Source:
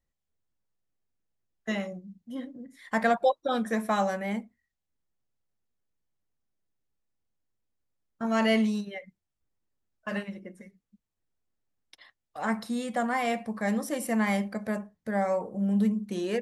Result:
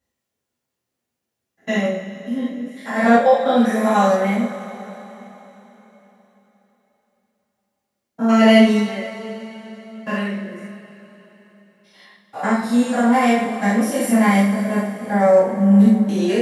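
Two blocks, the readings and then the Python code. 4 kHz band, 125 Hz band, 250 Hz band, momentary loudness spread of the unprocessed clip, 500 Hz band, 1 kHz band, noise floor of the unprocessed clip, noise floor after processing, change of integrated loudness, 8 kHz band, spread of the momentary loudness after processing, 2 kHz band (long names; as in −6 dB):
+10.5 dB, can't be measured, +13.0 dB, 16 LU, +12.0 dB, +11.0 dB, −84 dBFS, −81 dBFS, +12.0 dB, +10.5 dB, 20 LU, +9.5 dB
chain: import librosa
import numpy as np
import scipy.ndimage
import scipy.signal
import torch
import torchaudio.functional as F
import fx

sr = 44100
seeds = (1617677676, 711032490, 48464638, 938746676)

y = fx.spec_steps(x, sr, hold_ms=100)
y = scipy.signal.sosfilt(scipy.signal.butter(2, 120.0, 'highpass', fs=sr, output='sos'), y)
y = fx.rev_double_slope(y, sr, seeds[0], early_s=0.4, late_s=4.0, knee_db=-18, drr_db=-9.0)
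y = y * librosa.db_to_amplitude(3.5)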